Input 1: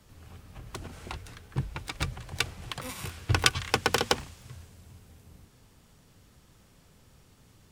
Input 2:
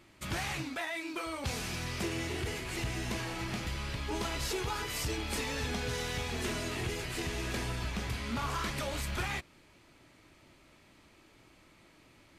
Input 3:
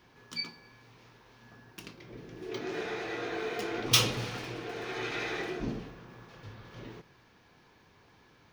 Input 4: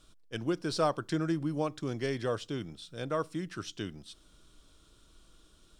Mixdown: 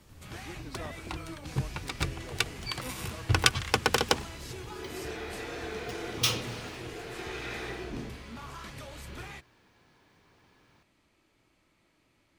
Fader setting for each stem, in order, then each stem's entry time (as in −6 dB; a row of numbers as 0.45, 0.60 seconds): 0.0, −9.0, −3.5, −16.0 decibels; 0.00, 0.00, 2.30, 0.00 seconds